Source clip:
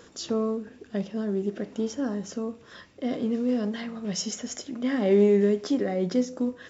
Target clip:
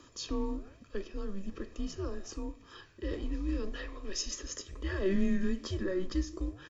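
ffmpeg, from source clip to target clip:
ffmpeg -i in.wav -af "aecho=1:1:1.5:0.8,flanger=delay=7.2:depth=8:regen=-90:speed=1.2:shape=sinusoidal,afreqshift=-190,volume=-1.5dB" out.wav

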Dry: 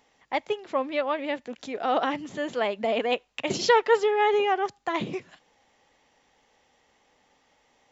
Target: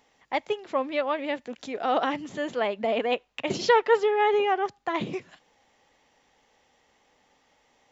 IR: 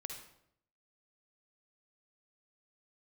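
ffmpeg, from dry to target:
-filter_complex "[0:a]asettb=1/sr,asplit=3[link_01][link_02][link_03];[link_01]atrim=end=2.514[link_04];[link_02]atrim=start=2.51:end=5.01,asetpts=PTS-STARTPTS,afade=type=in:duration=0.004:curve=qsin,afade=type=out:start_time=2.496:duration=0.004:curve=qsin,highshelf=frequency=6500:gain=-10[link_05];[link_03]atrim=start=5.006[link_06];[link_04][link_05]acrossfade=duration=0.004:curve1=hsin:curve2=qsin[link_07];[link_07][link_06]acrossfade=duration=0.004:curve1=qsin:curve2=hsin"

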